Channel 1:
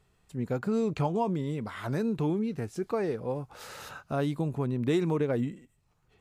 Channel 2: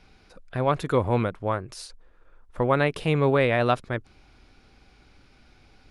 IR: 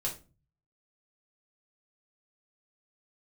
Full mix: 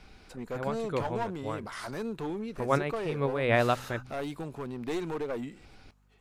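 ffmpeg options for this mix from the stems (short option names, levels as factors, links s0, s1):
-filter_complex "[0:a]highpass=f=480:p=1,aeval=exprs='clip(val(0),-1,0.0237)':c=same,aeval=exprs='val(0)+0.000562*(sin(2*PI*50*n/s)+sin(2*PI*2*50*n/s)/2+sin(2*PI*3*50*n/s)/3+sin(2*PI*4*50*n/s)/4+sin(2*PI*5*50*n/s)/5)':c=same,volume=1.06,asplit=2[s0][s1];[1:a]bandreject=f=126.3:t=h:w=4,bandreject=f=252.6:t=h:w=4,volume=1.26[s2];[s1]apad=whole_len=260556[s3];[s2][s3]sidechaincompress=threshold=0.00355:ratio=10:attack=33:release=166[s4];[s0][s4]amix=inputs=2:normalize=0"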